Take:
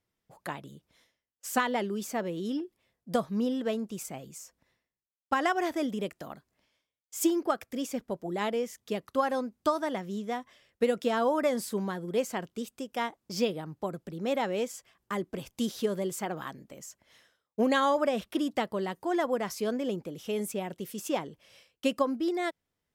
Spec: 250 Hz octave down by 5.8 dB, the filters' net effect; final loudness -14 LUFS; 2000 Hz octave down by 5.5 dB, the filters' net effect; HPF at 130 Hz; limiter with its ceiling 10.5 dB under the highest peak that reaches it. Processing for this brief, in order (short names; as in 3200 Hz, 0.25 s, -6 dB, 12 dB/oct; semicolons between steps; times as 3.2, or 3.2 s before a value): HPF 130 Hz; bell 250 Hz -7 dB; bell 2000 Hz -7 dB; gain +24 dB; limiter -2.5 dBFS